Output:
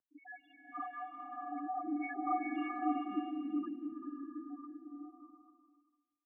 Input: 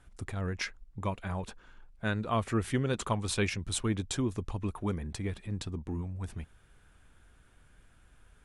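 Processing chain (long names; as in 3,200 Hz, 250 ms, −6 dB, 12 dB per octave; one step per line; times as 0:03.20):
every bin's largest magnitude spread in time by 120 ms
stiff-string resonator 320 Hz, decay 0.26 s, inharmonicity 0.008
spectral peaks only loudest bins 2
single-tap delay 528 ms −11.5 dB
wrong playback speed 33 rpm record played at 45 rpm
single-sideband voice off tune −140 Hz 360–2,100 Hz
slow-attack reverb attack 620 ms, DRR 0.5 dB
level +7.5 dB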